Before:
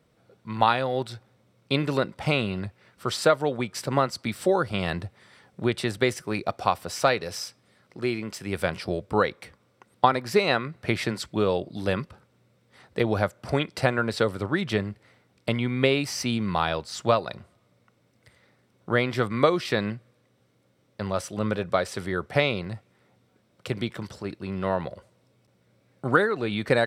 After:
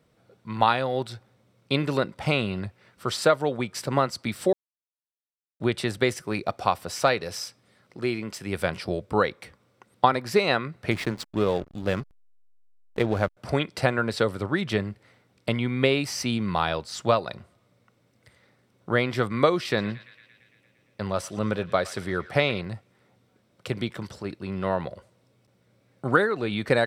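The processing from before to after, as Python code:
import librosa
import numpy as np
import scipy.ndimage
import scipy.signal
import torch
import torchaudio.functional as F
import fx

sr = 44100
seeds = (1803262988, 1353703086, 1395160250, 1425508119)

y = fx.backlash(x, sr, play_db=-29.5, at=(10.91, 13.37))
y = fx.echo_banded(y, sr, ms=114, feedback_pct=76, hz=2400.0, wet_db=-15.0, at=(19.66, 22.61))
y = fx.edit(y, sr, fx.silence(start_s=4.53, length_s=1.07), tone=tone)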